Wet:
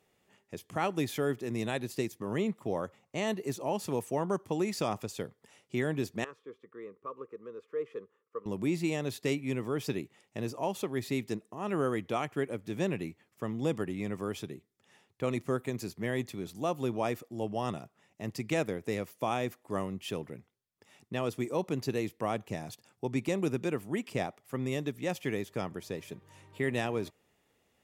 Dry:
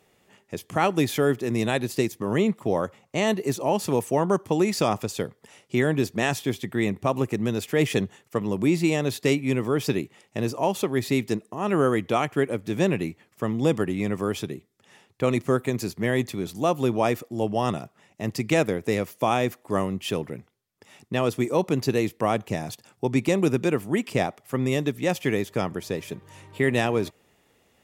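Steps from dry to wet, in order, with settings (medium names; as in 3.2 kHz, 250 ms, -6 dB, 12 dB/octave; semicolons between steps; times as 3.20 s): 6.24–8.46 s: two resonant band-passes 740 Hz, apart 1.3 oct; trim -9 dB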